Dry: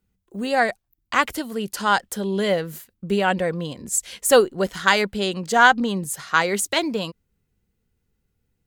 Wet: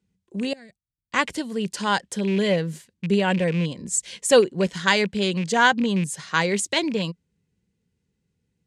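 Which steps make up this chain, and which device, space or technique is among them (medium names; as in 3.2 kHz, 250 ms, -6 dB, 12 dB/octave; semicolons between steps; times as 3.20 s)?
car door speaker with a rattle (rattle on loud lows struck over -30 dBFS, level -24 dBFS; cabinet simulation 82–9000 Hz, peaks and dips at 170 Hz +7 dB, 730 Hz -6 dB, 1.3 kHz -9 dB); 0.53–1.14 s: amplifier tone stack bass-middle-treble 10-0-1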